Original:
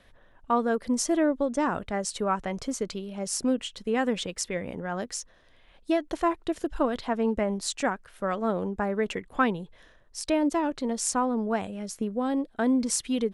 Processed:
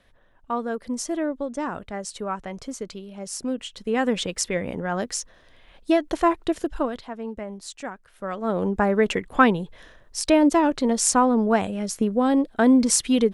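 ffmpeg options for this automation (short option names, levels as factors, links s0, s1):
-af "volume=10,afade=t=in:st=3.49:d=0.82:silence=0.398107,afade=t=out:st=6.47:d=0.62:silence=0.237137,afade=t=in:st=7.92:d=0.51:silence=0.473151,afade=t=in:st=8.43:d=0.27:silence=0.398107"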